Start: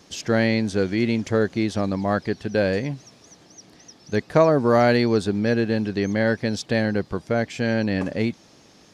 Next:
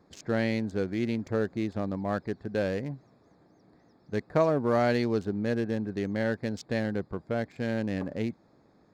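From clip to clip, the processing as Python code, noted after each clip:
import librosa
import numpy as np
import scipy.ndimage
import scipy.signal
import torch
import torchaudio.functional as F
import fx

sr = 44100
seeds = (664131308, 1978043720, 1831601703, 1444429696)

y = fx.wiener(x, sr, points=15)
y = y * 10.0 ** (-7.5 / 20.0)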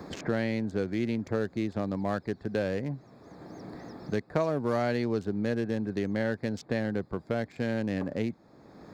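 y = fx.band_squash(x, sr, depth_pct=70)
y = y * 10.0 ** (-1.0 / 20.0)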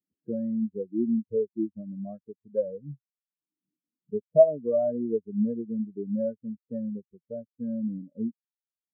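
y = fx.spectral_expand(x, sr, expansion=4.0)
y = y * 10.0 ** (4.5 / 20.0)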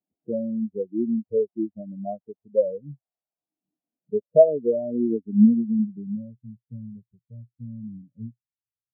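y = fx.filter_sweep_lowpass(x, sr, from_hz=710.0, to_hz=120.0, start_s=3.87, end_s=6.44, q=5.0)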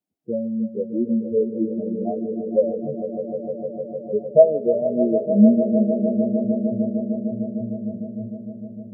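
y = fx.echo_swell(x, sr, ms=152, loudest=5, wet_db=-12.0)
y = y * 10.0 ** (2.0 / 20.0)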